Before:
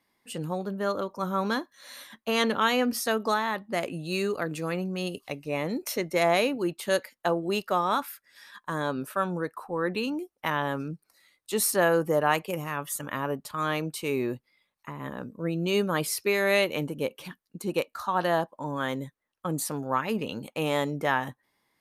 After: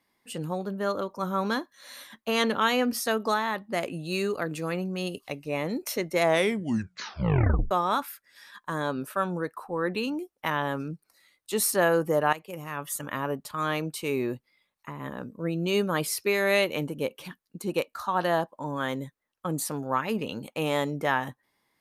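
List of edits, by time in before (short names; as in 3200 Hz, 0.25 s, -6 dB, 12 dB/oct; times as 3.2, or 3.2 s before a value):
6.23 tape stop 1.48 s
12.33–12.92 fade in, from -15 dB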